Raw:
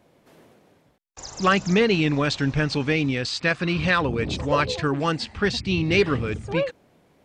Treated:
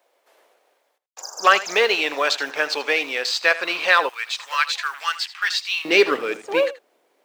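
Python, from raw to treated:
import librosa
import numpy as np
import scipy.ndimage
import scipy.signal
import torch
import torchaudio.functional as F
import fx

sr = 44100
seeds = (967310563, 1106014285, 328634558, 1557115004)

y = fx.law_mismatch(x, sr, coded='A')
y = y + 10.0 ** (-16.0 / 20.0) * np.pad(y, (int(80 * sr / 1000.0), 0))[:len(y)]
y = fx.spec_box(y, sr, start_s=1.21, length_s=0.24, low_hz=1700.0, high_hz=4600.0, gain_db=-20)
y = fx.highpass(y, sr, hz=fx.steps((0.0, 500.0), (4.09, 1200.0), (5.85, 360.0)), slope=24)
y = y * 10.0 ** (6.0 / 20.0)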